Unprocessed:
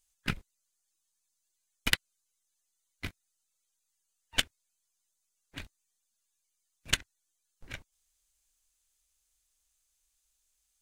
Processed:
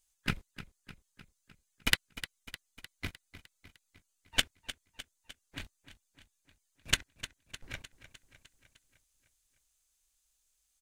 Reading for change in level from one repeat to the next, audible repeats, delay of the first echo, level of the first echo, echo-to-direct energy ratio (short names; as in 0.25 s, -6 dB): -4.5 dB, 5, 0.304 s, -14.0 dB, -12.0 dB